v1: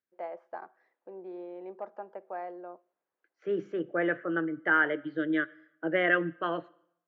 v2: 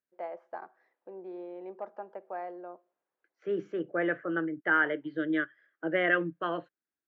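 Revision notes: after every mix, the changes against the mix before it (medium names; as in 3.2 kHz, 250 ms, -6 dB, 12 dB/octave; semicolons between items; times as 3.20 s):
reverb: off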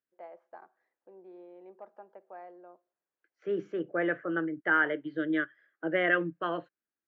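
first voice -8.5 dB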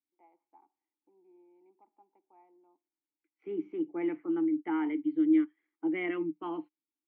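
second voice +9.0 dB; master: add vowel filter u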